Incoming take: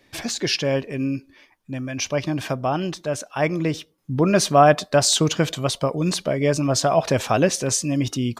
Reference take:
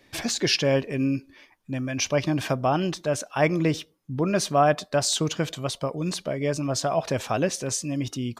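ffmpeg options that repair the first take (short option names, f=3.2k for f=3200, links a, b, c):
-af "asetnsamples=n=441:p=0,asendcmd='3.98 volume volume -6dB',volume=0dB"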